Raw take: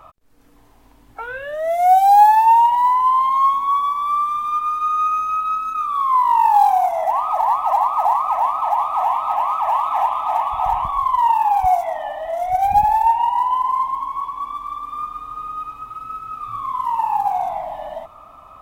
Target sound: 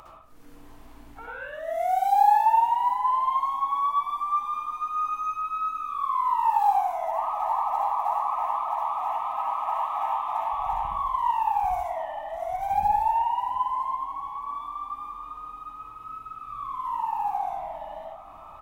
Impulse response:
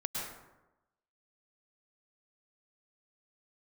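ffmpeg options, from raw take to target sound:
-filter_complex "[0:a]acompressor=mode=upward:threshold=-29dB:ratio=2.5,asplit=2[a][b];[b]adelay=711,lowpass=f=1.6k:p=1,volume=-16dB,asplit=2[c][d];[d]adelay=711,lowpass=f=1.6k:p=1,volume=0.46,asplit=2[e][f];[f]adelay=711,lowpass=f=1.6k:p=1,volume=0.46,asplit=2[g][h];[h]adelay=711,lowpass=f=1.6k:p=1,volume=0.46[i];[a][c][e][g][i]amix=inputs=5:normalize=0[j];[1:a]atrim=start_sample=2205,asetrate=79380,aresample=44100[k];[j][k]afir=irnorm=-1:irlink=0,volume=-7dB"

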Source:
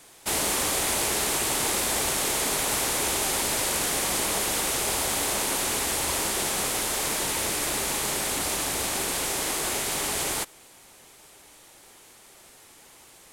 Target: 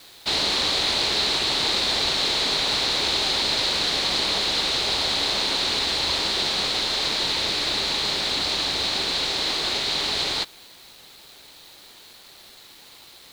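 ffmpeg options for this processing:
-af "lowpass=f=4.1k:t=q:w=5.9,acrusher=bits=7:mix=0:aa=0.000001"

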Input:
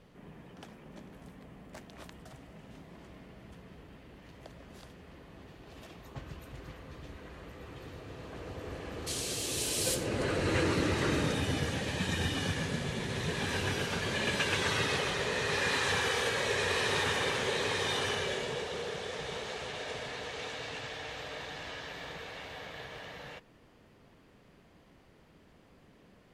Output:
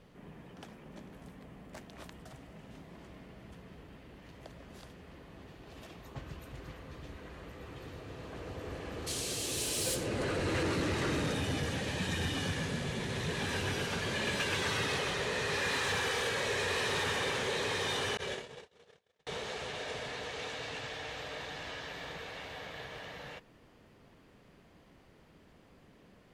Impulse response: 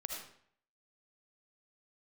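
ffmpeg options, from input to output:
-filter_complex "[0:a]asettb=1/sr,asplit=3[a][b][c];[a]atrim=end=18.174[d];[b]atrim=start=18.17:end=19.27,asetpts=PTS-STARTPTS,afade=t=in:d=0.004:c=qsin,afade=t=out:st=1.096:d=0.004:c=qsin,agate=range=-45dB:threshold=-33dB:ratio=16:detection=peak[e];[c]atrim=start=19.266[f];[d][e]acrossfade=d=0.004:c1=hsin:c2=qsin[g];[g][f]acrossfade=d=0.004:c1=qsin:c2=hsin,asoftclip=type=tanh:threshold=-26.5dB"

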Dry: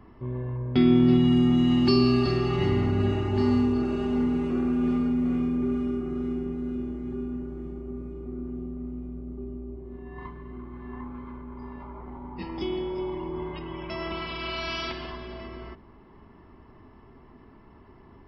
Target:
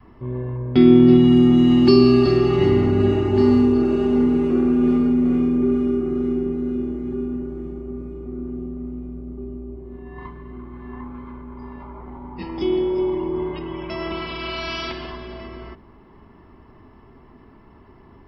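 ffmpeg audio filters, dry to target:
-af "adynamicequalizer=threshold=0.0141:dfrequency=360:dqfactor=1.2:tfrequency=360:tqfactor=1.2:attack=5:release=100:ratio=0.375:range=3.5:mode=boostabove:tftype=bell,volume=3.5dB"

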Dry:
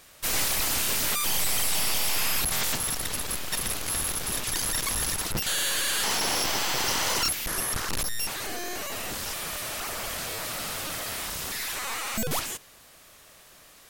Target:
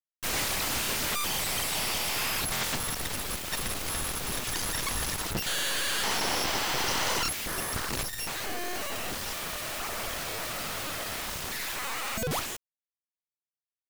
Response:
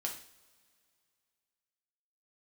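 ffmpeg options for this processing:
-af "highshelf=f=5.8k:g=-8,acrusher=bits=5:mix=0:aa=0.000001,afftfilt=real='re*lt(hypot(re,im),0.398)':imag='im*lt(hypot(re,im),0.398)':win_size=1024:overlap=0.75"

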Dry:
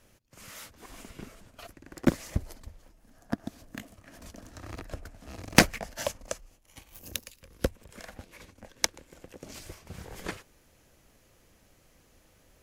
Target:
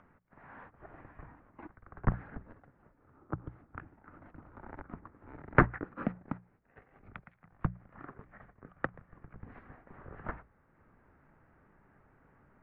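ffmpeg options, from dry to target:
-af "highpass=f=290:t=q:w=0.5412,highpass=f=290:t=q:w=1.307,lowpass=f=2.1k:t=q:w=0.5176,lowpass=f=2.1k:t=q:w=0.7071,lowpass=f=2.1k:t=q:w=1.932,afreqshift=-370,acompressor=mode=upward:threshold=-57dB:ratio=2.5,bandreject=f=60:t=h:w=6,bandreject=f=120:t=h:w=6,bandreject=f=180:t=h:w=6"

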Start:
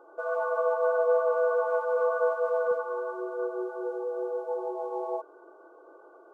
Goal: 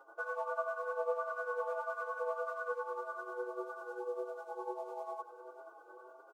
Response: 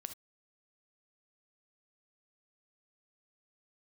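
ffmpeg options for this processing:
-filter_complex "[0:a]tiltshelf=f=700:g=-9.5,acompressor=threshold=-32dB:ratio=2,tremolo=f=10:d=0.65,aecho=1:1:479|958|1437|1916|2395|2874:0.224|0.123|0.0677|0.0372|0.0205|0.0113,asplit=2[a][b];[b]adelay=7.1,afreqshift=1.6[c];[a][c]amix=inputs=2:normalize=1"

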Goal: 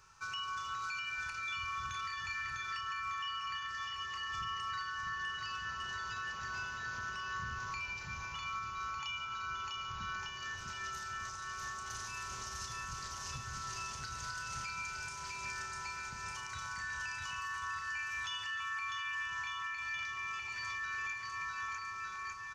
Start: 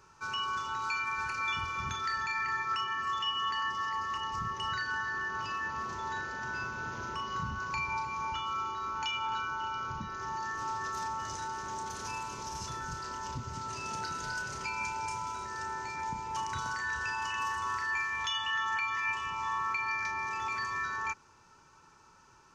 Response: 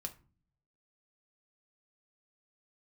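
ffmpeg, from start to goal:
-filter_complex "[0:a]equalizer=f=320:w=0.57:g=-14.5,aecho=1:1:650|1202|1672|2071|2411:0.631|0.398|0.251|0.158|0.1,alimiter=level_in=8.5dB:limit=-24dB:level=0:latency=1:release=332,volume=-8.5dB,bandreject=f=890:w=14,asplit=2[a][b];[1:a]atrim=start_sample=2205,adelay=141[c];[b][c]afir=irnorm=-1:irlink=0,volume=-12dB[d];[a][d]amix=inputs=2:normalize=0,volume=1dB"

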